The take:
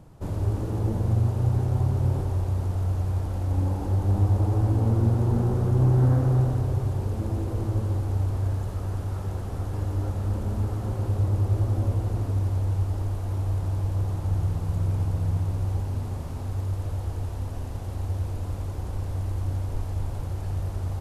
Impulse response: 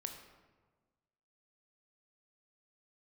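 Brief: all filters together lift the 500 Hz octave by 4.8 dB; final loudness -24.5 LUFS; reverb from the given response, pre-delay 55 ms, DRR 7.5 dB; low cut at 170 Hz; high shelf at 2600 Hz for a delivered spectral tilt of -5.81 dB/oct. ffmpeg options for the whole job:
-filter_complex "[0:a]highpass=170,equalizer=f=500:t=o:g=6.5,highshelf=f=2.6k:g=-4,asplit=2[a][b];[1:a]atrim=start_sample=2205,adelay=55[c];[b][c]afir=irnorm=-1:irlink=0,volume=-5.5dB[d];[a][d]amix=inputs=2:normalize=0,volume=6.5dB"

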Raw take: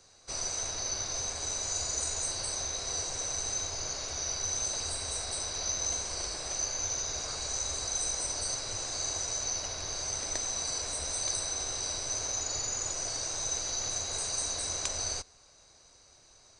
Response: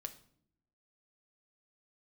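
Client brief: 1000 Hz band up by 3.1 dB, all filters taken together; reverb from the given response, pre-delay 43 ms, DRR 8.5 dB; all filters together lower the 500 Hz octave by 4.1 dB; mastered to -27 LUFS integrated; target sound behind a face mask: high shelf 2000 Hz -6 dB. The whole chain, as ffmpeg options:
-filter_complex "[0:a]equalizer=f=500:t=o:g=-8,equalizer=f=1k:t=o:g=8,asplit=2[a][b];[1:a]atrim=start_sample=2205,adelay=43[c];[b][c]afir=irnorm=-1:irlink=0,volume=-5.5dB[d];[a][d]amix=inputs=2:normalize=0,highshelf=f=2k:g=-6,volume=8.5dB"

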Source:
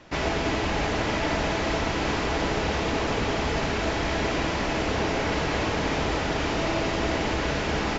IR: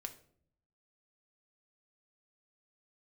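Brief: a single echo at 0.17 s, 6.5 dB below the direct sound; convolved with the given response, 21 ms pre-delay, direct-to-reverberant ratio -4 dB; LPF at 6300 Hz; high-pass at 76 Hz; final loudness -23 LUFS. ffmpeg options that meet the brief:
-filter_complex "[0:a]highpass=76,lowpass=6.3k,aecho=1:1:170:0.473,asplit=2[a][b];[1:a]atrim=start_sample=2205,adelay=21[c];[b][c]afir=irnorm=-1:irlink=0,volume=7.5dB[d];[a][d]amix=inputs=2:normalize=0,volume=-3dB"

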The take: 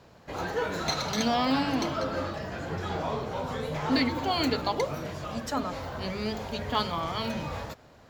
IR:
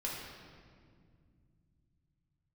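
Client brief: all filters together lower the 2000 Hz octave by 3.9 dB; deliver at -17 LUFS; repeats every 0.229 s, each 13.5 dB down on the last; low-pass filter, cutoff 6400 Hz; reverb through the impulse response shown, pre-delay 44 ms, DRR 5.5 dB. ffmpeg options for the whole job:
-filter_complex "[0:a]lowpass=6.4k,equalizer=f=2k:t=o:g=-5,aecho=1:1:229|458:0.211|0.0444,asplit=2[a][b];[1:a]atrim=start_sample=2205,adelay=44[c];[b][c]afir=irnorm=-1:irlink=0,volume=-8dB[d];[a][d]amix=inputs=2:normalize=0,volume=12.5dB"

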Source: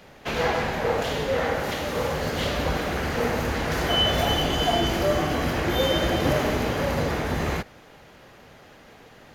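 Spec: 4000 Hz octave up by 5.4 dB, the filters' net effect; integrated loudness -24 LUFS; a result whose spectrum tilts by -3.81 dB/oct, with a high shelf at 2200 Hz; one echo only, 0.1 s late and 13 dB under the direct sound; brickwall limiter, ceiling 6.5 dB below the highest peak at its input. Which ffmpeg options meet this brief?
-af "highshelf=f=2.2k:g=3.5,equalizer=f=4k:t=o:g=4.5,alimiter=limit=-14dB:level=0:latency=1,aecho=1:1:100:0.224,volume=-0.5dB"

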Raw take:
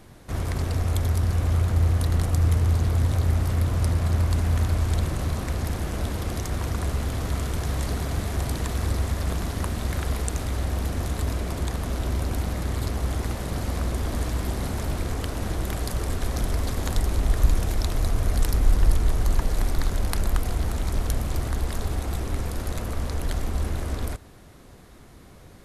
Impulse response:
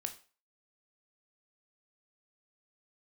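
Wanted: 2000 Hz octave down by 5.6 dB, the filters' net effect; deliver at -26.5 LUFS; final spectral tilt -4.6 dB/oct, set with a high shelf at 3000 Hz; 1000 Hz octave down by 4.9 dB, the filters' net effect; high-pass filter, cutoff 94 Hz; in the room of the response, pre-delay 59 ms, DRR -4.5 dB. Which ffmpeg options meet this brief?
-filter_complex "[0:a]highpass=94,equalizer=f=1k:t=o:g=-5.5,equalizer=f=2k:t=o:g=-7.5,highshelf=f=3k:g=6,asplit=2[a][b];[1:a]atrim=start_sample=2205,adelay=59[c];[b][c]afir=irnorm=-1:irlink=0,volume=5.5dB[d];[a][d]amix=inputs=2:normalize=0,volume=-3.5dB"

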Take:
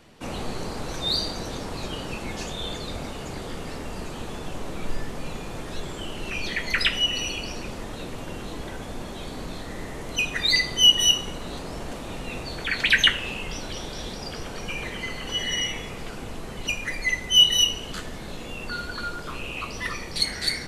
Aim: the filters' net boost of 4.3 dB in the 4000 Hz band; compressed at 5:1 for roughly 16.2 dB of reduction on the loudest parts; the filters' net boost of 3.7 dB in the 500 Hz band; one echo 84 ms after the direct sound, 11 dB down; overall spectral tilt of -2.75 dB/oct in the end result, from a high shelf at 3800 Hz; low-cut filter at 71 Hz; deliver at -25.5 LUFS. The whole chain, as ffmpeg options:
-af "highpass=71,equalizer=f=500:t=o:g=4.5,highshelf=f=3.8k:g=-3.5,equalizer=f=4k:t=o:g=9,acompressor=threshold=-27dB:ratio=5,aecho=1:1:84:0.282,volume=4.5dB"

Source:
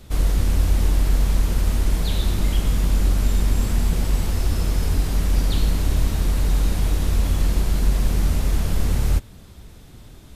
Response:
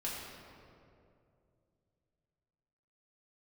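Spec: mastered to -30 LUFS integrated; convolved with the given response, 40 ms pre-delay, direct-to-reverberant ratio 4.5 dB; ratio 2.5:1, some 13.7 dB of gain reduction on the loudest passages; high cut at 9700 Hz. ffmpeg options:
-filter_complex "[0:a]lowpass=9.7k,acompressor=threshold=-35dB:ratio=2.5,asplit=2[a][b];[1:a]atrim=start_sample=2205,adelay=40[c];[b][c]afir=irnorm=-1:irlink=0,volume=-7dB[d];[a][d]amix=inputs=2:normalize=0,volume=4dB"

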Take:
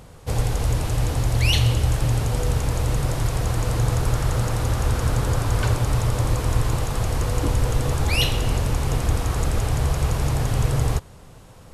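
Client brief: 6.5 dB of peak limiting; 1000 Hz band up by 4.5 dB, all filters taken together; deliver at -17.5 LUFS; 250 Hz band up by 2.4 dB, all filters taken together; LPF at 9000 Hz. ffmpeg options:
-af "lowpass=9k,equalizer=f=250:t=o:g=3.5,equalizer=f=1k:t=o:g=5.5,volume=6dB,alimiter=limit=-7dB:level=0:latency=1"

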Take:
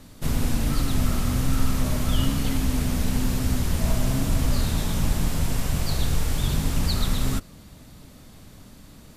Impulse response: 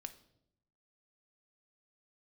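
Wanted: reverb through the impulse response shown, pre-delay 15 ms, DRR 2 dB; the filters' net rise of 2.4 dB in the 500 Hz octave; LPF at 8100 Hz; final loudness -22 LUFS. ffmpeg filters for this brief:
-filter_complex "[0:a]lowpass=8.1k,equalizer=f=500:t=o:g=3,asplit=2[a][b];[1:a]atrim=start_sample=2205,adelay=15[c];[b][c]afir=irnorm=-1:irlink=0,volume=2.5dB[d];[a][d]amix=inputs=2:normalize=0,volume=1.5dB"

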